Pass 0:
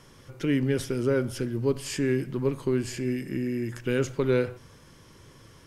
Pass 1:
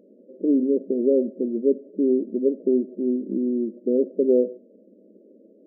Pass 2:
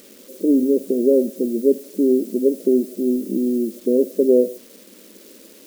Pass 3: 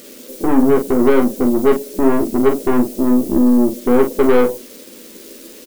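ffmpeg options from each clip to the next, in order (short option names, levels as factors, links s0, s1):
-af "afftfilt=real='re*between(b*sr/4096,190,650)':imag='im*between(b*sr/4096,190,650)':win_size=4096:overlap=0.75,volume=2"
-af "acrusher=bits=9:mix=0:aa=0.000001,crystalizer=i=5.5:c=0,volume=1.5"
-filter_complex "[0:a]aeval=exprs='(tanh(8.91*val(0)+0.55)-tanh(0.55))/8.91':c=same,asplit=2[s0][s1];[s1]aecho=0:1:12|45:0.631|0.447[s2];[s0][s2]amix=inputs=2:normalize=0,volume=2.51"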